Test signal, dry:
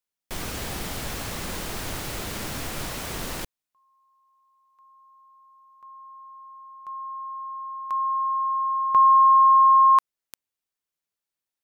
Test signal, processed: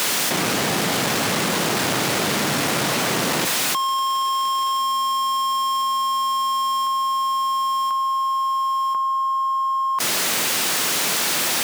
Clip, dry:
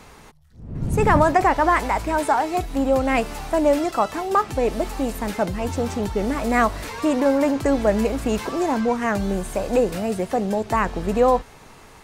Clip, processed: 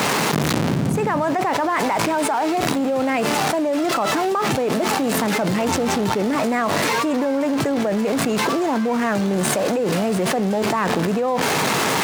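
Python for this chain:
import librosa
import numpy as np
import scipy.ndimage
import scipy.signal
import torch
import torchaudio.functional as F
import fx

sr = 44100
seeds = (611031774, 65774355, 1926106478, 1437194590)

y = x + 0.5 * 10.0 ** (-25.5 / 20.0) * np.sign(x)
y = scipy.signal.sosfilt(scipy.signal.butter(4, 140.0, 'highpass', fs=sr, output='sos'), y)
y = fx.high_shelf(y, sr, hz=9800.0, db=-8.5)
y = fx.env_flatten(y, sr, amount_pct=100)
y = y * 10.0 ** (-7.5 / 20.0)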